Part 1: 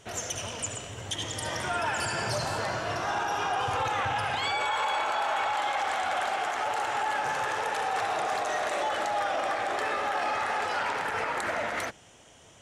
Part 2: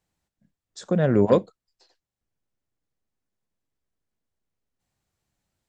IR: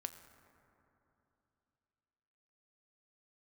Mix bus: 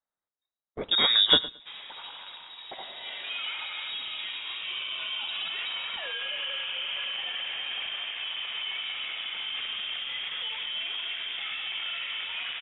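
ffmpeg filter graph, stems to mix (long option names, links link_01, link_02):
-filter_complex "[0:a]adelay=1600,volume=-5dB[link_01];[1:a]agate=range=-23dB:threshold=-49dB:ratio=16:detection=peak,aexciter=amount=13.7:drive=7.4:freq=2200,volume=-4dB,asplit=3[link_02][link_03][link_04];[link_03]volume=-18.5dB[link_05];[link_04]volume=-16.5dB[link_06];[2:a]atrim=start_sample=2205[link_07];[link_05][link_07]afir=irnorm=-1:irlink=0[link_08];[link_06]aecho=0:1:110|220|330:1|0.17|0.0289[link_09];[link_01][link_02][link_08][link_09]amix=inputs=4:normalize=0,lowpass=frequency=3300:width_type=q:width=0.5098,lowpass=frequency=3300:width_type=q:width=0.6013,lowpass=frequency=3300:width_type=q:width=0.9,lowpass=frequency=3300:width_type=q:width=2.563,afreqshift=-3900"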